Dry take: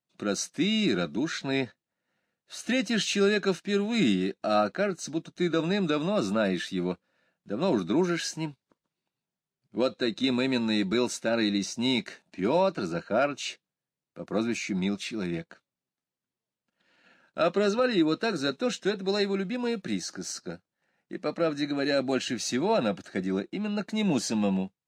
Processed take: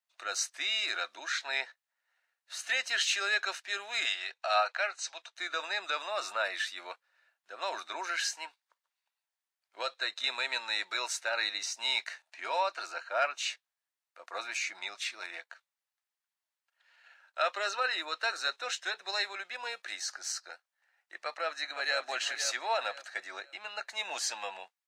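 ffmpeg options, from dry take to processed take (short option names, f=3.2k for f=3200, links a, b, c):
-filter_complex "[0:a]asettb=1/sr,asplit=3[a][b][c];[a]atrim=end=4.054[d];[b]atrim=start=4.05:end=5.36,asetpts=PTS-STARTPTS,afade=t=in:d=0.004:c=qsin,afade=t=out:st=1.306:d=0.004:c=qsin,highpass=f=450:w=0.5412,highpass=f=450:w=1.3066,equalizer=f=880:t=q:w=4:g=3,equalizer=f=2.5k:t=q:w=4:g=5,equalizer=f=3.8k:t=q:w=4:g=3,lowpass=f=8.5k:w=0.5412,lowpass=f=8.5k:w=1.3066[e];[c]atrim=start=5.356[f];[d][e]acrossfade=d=0.004:c1=hsin:c2=qsin[g];[g][f]acrossfade=d=0.004:c1=qsin:c2=hsin,asplit=2[h][i];[i]afade=t=in:st=21.24:d=0.01,afade=t=out:st=22.07:d=0.01,aecho=0:1:510|1020|1530|2040:0.375837|0.112751|0.0338254|0.0101476[j];[h][j]amix=inputs=2:normalize=0,highpass=f=760:w=0.5412,highpass=f=760:w=1.3066,equalizer=f=1.8k:w=3:g=3.5"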